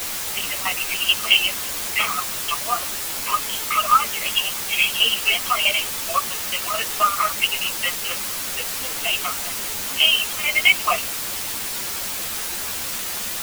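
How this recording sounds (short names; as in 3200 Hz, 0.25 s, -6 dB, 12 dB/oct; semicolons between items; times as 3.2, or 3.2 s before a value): tremolo saw down 4.6 Hz, depth 85%; a quantiser's noise floor 6-bit, dither triangular; a shimmering, thickened sound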